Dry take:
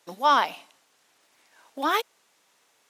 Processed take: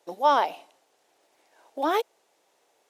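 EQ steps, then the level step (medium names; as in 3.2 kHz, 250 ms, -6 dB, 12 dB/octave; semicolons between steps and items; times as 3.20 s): high-order bell 520 Hz +10 dB; -5.5 dB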